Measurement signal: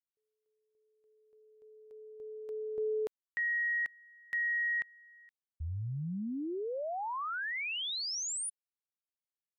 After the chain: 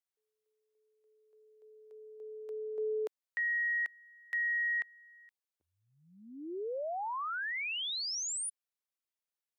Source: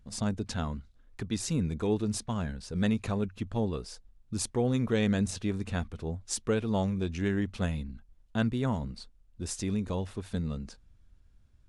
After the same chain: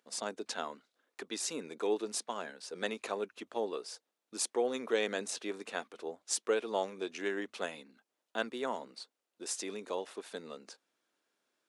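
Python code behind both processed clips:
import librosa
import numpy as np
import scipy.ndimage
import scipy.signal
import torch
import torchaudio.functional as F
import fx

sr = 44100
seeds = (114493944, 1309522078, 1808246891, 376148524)

y = scipy.signal.sosfilt(scipy.signal.butter(4, 360.0, 'highpass', fs=sr, output='sos'), x)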